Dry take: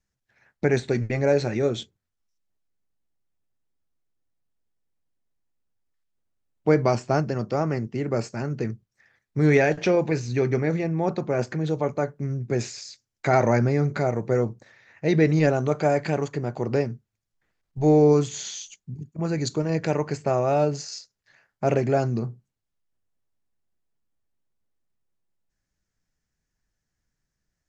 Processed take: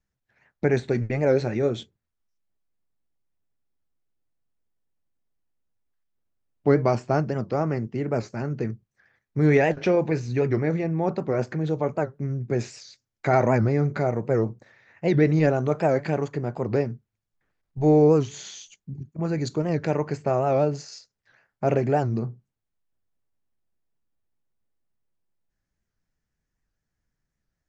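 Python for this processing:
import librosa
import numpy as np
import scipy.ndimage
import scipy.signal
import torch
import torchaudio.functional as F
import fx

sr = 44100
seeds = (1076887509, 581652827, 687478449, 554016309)

y = fx.high_shelf(x, sr, hz=3600.0, db=-8.5)
y = fx.record_warp(y, sr, rpm=78.0, depth_cents=160.0)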